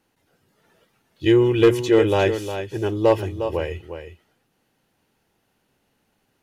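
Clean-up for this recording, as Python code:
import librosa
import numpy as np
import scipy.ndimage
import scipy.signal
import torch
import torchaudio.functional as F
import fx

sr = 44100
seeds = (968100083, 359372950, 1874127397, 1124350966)

y = fx.fix_declip(x, sr, threshold_db=-7.0)
y = fx.fix_echo_inverse(y, sr, delay_ms=357, level_db=-9.5)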